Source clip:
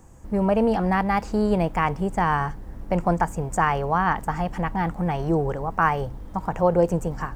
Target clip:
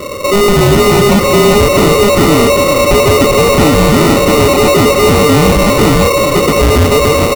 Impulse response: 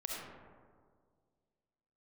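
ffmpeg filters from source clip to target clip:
-filter_complex "[0:a]afftfilt=real='real(if(lt(b,960),b+48*(1-2*mod(floor(b/48),2)),b),0)':imag='imag(if(lt(b,960),b+48*(1-2*mod(floor(b/48),2)),b),0)':win_size=2048:overlap=0.75,dynaudnorm=f=320:g=11:m=1.58,asplit=2[s0][s1];[s1]highpass=f=720:p=1,volume=50.1,asoftclip=type=tanh:threshold=0.841[s2];[s0][s2]amix=inputs=2:normalize=0,lowpass=f=7300:p=1,volume=0.501,acrusher=samples=27:mix=1:aa=0.000001,aecho=1:1:386:0.376"

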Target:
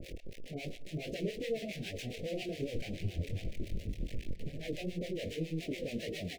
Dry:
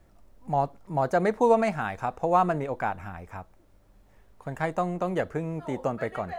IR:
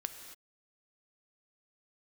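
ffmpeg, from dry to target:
-filter_complex "[0:a]aeval=exprs='val(0)+0.5*0.0422*sgn(val(0))':c=same,asettb=1/sr,asplit=3[s0][s1][s2];[s0]atrim=end=2.614[s3];[s1]atrim=start=2.61:end=4.54,asetpts=PTS-STARTPTS,afade=t=in:d=0.004:c=qsin,afade=t=out:st=1.926:d=0.004:c=qsin,bass=f=250:g=12,treble=f=4000:g=-1[s4];[s2]atrim=start=4.536[s5];[s3][s4]acrossfade=d=0.004:c1=hsin:c2=qsin[s6];[s6][s5]acrossfade=d=0.004:c1=qsin:c2=hsin,asoftclip=type=tanh:threshold=0.0794,asplit=2[s7][s8];[s8]highpass=f=720:p=1,volume=3.98,asoftclip=type=tanh:threshold=0.282[s9];[s7][s9]amix=inputs=2:normalize=0,lowpass=f=1900:p=1,volume=0.501,flanger=delay=17.5:depth=8:speed=2.6,asplit=2[s10][s11];[1:a]atrim=start_sample=2205,lowpass=5000,lowshelf=f=170:g=9[s12];[s11][s12]afir=irnorm=-1:irlink=0,volume=0.376[s13];[s10][s13]amix=inputs=2:normalize=0,acrossover=split=630[s14][s15];[s14]aeval=exprs='val(0)*(1-1/2+1/2*cos(2*PI*7.2*n/s))':c=same[s16];[s15]aeval=exprs='val(0)*(1-1/2-1/2*cos(2*PI*7.2*n/s))':c=same[s17];[s16][s17]amix=inputs=2:normalize=0,asuperstop=centerf=1100:order=8:qfactor=0.66,aecho=1:1:620:0.133,adynamicequalizer=threshold=0.00501:dfrequency=2300:dqfactor=0.7:tfrequency=2300:tqfactor=0.7:attack=5:release=100:ratio=0.375:range=2.5:mode=boostabove:tftype=highshelf,volume=0.631"

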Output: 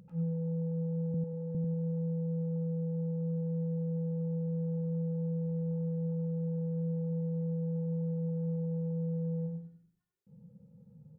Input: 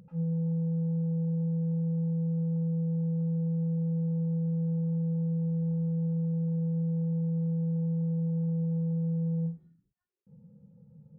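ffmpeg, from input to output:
-filter_complex "[0:a]asettb=1/sr,asplit=3[s0][s1][s2];[s0]atrim=end=1.144[s3];[s1]atrim=start=1.14:end=1.55,asetpts=PTS-STARTPTS,afade=t=in:d=0.004:c=qsin,afade=t=out:st=0.406:d=0.004:c=qsin,highpass=200[s4];[s2]atrim=start=1.546[s5];[s3][s4]acrossfade=d=0.004:c1=hsin:c2=qsin[s6];[s6][s5]acrossfade=d=0.004:c1=qsin:c2=hsin,asplit=2[s7][s8];[s8]aecho=0:1:95|190|285|380:0.562|0.152|0.041|0.0111[s9];[s7][s9]amix=inputs=2:normalize=0,volume=0.794"

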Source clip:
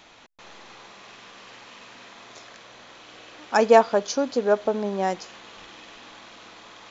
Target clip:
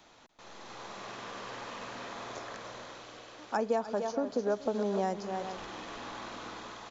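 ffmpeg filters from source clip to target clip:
-filter_complex "[0:a]asplit=2[s0][s1];[s1]aecho=0:1:421:0.0944[s2];[s0][s2]amix=inputs=2:normalize=0,dynaudnorm=f=120:g=13:m=3.98,equalizer=f=2500:w=1.1:g=-6,asplit=2[s3][s4];[s4]aecho=0:1:292:0.251[s5];[s3][s5]amix=inputs=2:normalize=0,acrossover=split=210|2400[s6][s7][s8];[s6]acompressor=threshold=0.0178:ratio=4[s9];[s7]acompressor=threshold=0.0631:ratio=4[s10];[s8]acompressor=threshold=0.00501:ratio=4[s11];[s9][s10][s11]amix=inputs=3:normalize=0,volume=0.531"

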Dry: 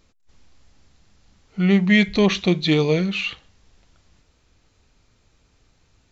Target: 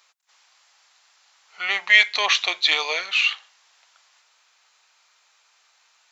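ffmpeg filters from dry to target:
-af "highpass=f=830:w=0.5412,highpass=f=830:w=1.3066,volume=2.11"

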